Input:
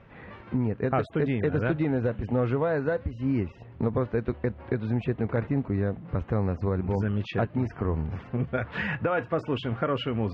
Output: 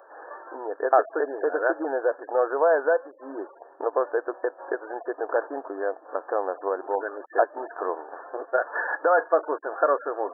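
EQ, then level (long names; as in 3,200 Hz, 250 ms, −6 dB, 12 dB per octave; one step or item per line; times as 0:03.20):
linear-phase brick-wall band-pass 280–1,800 Hz
spectral tilt +4.5 dB per octave
parametric band 670 Hz +13 dB 1.5 octaves
0.0 dB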